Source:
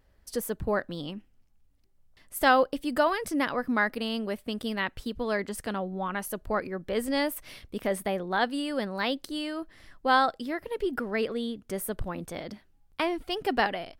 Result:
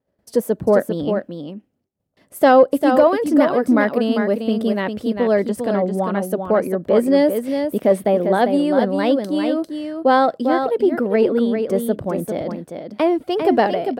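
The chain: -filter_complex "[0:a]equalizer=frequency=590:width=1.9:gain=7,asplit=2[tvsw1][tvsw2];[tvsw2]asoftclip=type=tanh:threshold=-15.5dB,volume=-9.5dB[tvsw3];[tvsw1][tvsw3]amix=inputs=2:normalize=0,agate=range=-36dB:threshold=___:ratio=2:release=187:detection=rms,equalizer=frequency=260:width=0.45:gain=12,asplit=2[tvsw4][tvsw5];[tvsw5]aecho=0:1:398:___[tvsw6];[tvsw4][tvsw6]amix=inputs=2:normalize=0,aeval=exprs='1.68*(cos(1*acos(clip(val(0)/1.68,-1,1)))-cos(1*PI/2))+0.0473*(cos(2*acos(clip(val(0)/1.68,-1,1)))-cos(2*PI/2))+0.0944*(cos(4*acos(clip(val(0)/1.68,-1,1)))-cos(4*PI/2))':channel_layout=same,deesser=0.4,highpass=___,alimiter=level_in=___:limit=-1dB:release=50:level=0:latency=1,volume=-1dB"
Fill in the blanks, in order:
-50dB, 0.473, 100, -0.5dB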